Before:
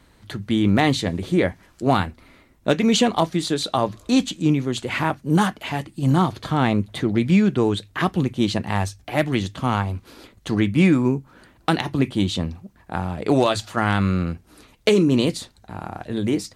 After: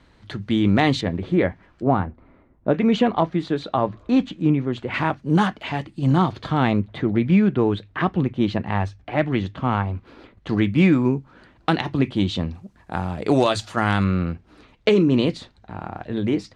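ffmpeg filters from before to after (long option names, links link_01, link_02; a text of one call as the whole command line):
ffmpeg -i in.wav -af "asetnsamples=nb_out_samples=441:pad=0,asendcmd='1.01 lowpass f 2500;1.83 lowpass f 1100;2.74 lowpass f 2100;4.94 lowpass f 4400;6.81 lowpass f 2500;10.49 lowpass f 4400;12.54 lowpass f 8500;14.04 lowpass f 3500',lowpass=5000" out.wav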